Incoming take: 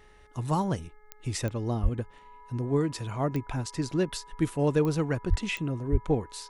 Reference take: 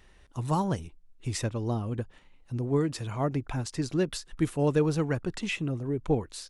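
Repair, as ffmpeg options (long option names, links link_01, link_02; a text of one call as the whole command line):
ffmpeg -i in.wav -filter_complex "[0:a]adeclick=threshold=4,bandreject=frequency=422.5:width_type=h:width=4,bandreject=frequency=845:width_type=h:width=4,bandreject=frequency=1267.5:width_type=h:width=4,bandreject=frequency=1690:width_type=h:width=4,bandreject=frequency=2112.5:width_type=h:width=4,bandreject=frequency=980:width=30,asplit=3[link_01][link_02][link_03];[link_01]afade=type=out:start_time=1.82:duration=0.02[link_04];[link_02]highpass=frequency=140:width=0.5412,highpass=frequency=140:width=1.3066,afade=type=in:start_time=1.82:duration=0.02,afade=type=out:start_time=1.94:duration=0.02[link_05];[link_03]afade=type=in:start_time=1.94:duration=0.02[link_06];[link_04][link_05][link_06]amix=inputs=3:normalize=0,asplit=3[link_07][link_08][link_09];[link_07]afade=type=out:start_time=5.29:duration=0.02[link_10];[link_08]highpass=frequency=140:width=0.5412,highpass=frequency=140:width=1.3066,afade=type=in:start_time=5.29:duration=0.02,afade=type=out:start_time=5.41:duration=0.02[link_11];[link_09]afade=type=in:start_time=5.41:duration=0.02[link_12];[link_10][link_11][link_12]amix=inputs=3:normalize=0,asplit=3[link_13][link_14][link_15];[link_13]afade=type=out:start_time=5.91:duration=0.02[link_16];[link_14]highpass=frequency=140:width=0.5412,highpass=frequency=140:width=1.3066,afade=type=in:start_time=5.91:duration=0.02,afade=type=out:start_time=6.03:duration=0.02[link_17];[link_15]afade=type=in:start_time=6.03:duration=0.02[link_18];[link_16][link_17][link_18]amix=inputs=3:normalize=0" out.wav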